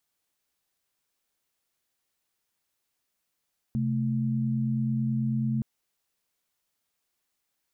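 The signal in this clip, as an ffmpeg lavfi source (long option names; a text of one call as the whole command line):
ffmpeg -f lavfi -i "aevalsrc='0.0447*(sin(2*PI*130.81*t)+sin(2*PI*220*t))':duration=1.87:sample_rate=44100" out.wav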